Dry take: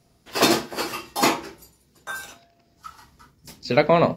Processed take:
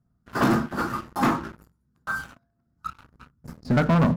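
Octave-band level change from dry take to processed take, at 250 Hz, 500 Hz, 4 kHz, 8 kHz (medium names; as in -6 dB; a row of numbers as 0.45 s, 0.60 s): +3.0 dB, -7.5 dB, -13.5 dB, -14.0 dB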